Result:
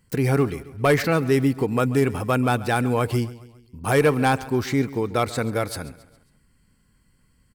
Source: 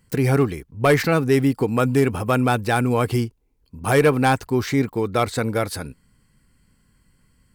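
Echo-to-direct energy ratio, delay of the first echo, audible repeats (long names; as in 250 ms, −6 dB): −17.0 dB, 136 ms, 3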